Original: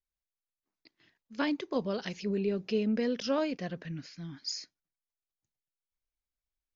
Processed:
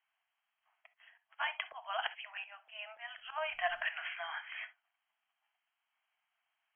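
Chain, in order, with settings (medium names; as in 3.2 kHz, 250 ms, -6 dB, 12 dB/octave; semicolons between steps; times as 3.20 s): brick-wall FIR band-pass 630–3300 Hz; 3.18–3.83 s: added noise brown -80 dBFS; slow attack 770 ms; gated-style reverb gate 90 ms flat, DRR 11.5 dB; trim +18 dB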